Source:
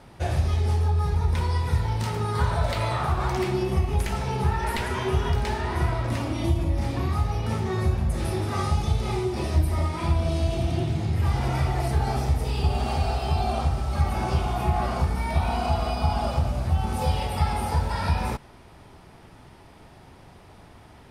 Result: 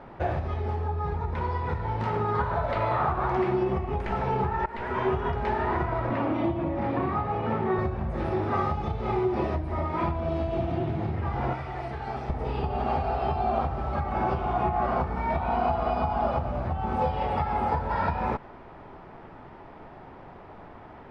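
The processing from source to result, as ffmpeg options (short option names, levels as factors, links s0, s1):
-filter_complex "[0:a]asettb=1/sr,asplit=3[s0][s1][s2];[s0]atrim=end=6.094[s3];[s1]atrim=start=6.09:end=7.79,asetpts=PTS-STARTPTS,afade=t=in:d=0.004:c=qsin,afade=t=out:st=1.696:d=0.004:c=qsin,highpass=120,lowpass=3800[s4];[s2]atrim=start=7.786[s5];[s3][s4]acrossfade=d=0.004:c1=hsin:c2=qsin[s6];[s6][s5]acrossfade=d=0.004:c1=qsin:c2=hsin,asettb=1/sr,asplit=3[s7][s8][s9];[s7]atrim=end=11.534[s10];[s8]atrim=start=11.53:end=12.3,asetpts=PTS-STARTPTS,afade=t=in:d=0.004:c=qsin,afade=t=out:st=0.766:d=0.004:c=qsin,acrossover=split=1800|5900[s11][s12][s13];[s11]acompressor=threshold=0.0178:ratio=4[s14];[s12]acompressor=threshold=0.00562:ratio=4[s15];[s13]acompressor=threshold=0.00355:ratio=4[s16];[s14][s15][s16]amix=inputs=3:normalize=0[s17];[s9]atrim=start=12.296[s18];[s10][s17]acrossfade=d=0.004:c1=hsin:c2=qsin[s19];[s19][s18]acrossfade=d=0.004:c1=qsin:c2=hsin,asplit=2[s20][s21];[s20]atrim=end=4.66,asetpts=PTS-STARTPTS,afade=t=out:st=4.656:d=0.004:c=hsin:silence=0.0891251[s22];[s21]atrim=start=4.66,asetpts=PTS-STARTPTS,afade=t=in:d=0.51:silence=0.0891251[s23];[s22][s23]concat=n=2:v=0:a=1,acompressor=threshold=0.0562:ratio=6,lowpass=1500,equalizer=f=71:w=0.39:g=-10.5,volume=2.37"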